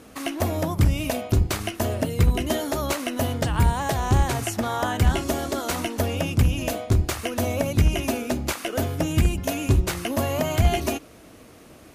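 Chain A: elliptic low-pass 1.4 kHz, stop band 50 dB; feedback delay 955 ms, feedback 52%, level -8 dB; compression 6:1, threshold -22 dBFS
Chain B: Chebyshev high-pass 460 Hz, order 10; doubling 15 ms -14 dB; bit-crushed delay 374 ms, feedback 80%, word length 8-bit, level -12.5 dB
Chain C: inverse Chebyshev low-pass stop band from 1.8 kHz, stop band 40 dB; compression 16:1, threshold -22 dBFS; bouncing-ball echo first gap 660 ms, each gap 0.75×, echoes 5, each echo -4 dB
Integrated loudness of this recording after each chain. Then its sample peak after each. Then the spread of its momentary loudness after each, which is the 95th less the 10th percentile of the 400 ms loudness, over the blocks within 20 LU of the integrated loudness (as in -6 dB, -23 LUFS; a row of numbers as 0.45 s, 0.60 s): -28.5 LUFS, -29.0 LUFS, -27.5 LUFS; -13.5 dBFS, -11.5 dBFS, -11.0 dBFS; 3 LU, 4 LU, 3 LU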